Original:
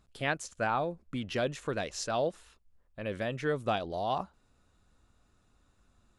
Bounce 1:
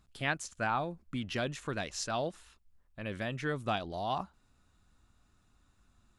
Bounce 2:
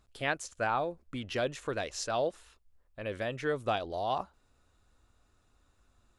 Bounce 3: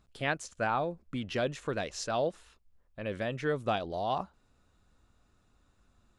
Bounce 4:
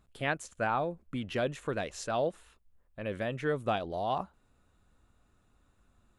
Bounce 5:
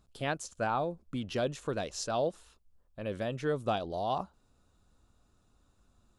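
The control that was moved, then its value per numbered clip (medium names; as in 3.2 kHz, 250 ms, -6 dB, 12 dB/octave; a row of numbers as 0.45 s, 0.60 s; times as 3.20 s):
peaking EQ, frequency: 500 Hz, 180 Hz, 15 kHz, 5.2 kHz, 2 kHz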